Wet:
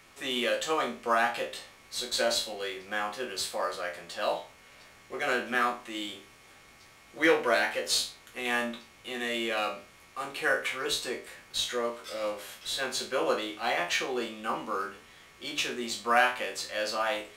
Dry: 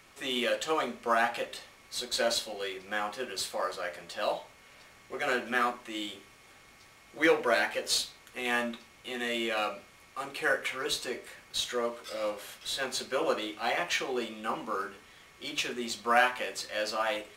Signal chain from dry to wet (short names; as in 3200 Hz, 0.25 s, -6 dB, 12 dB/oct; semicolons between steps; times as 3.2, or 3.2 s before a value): spectral trails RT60 0.32 s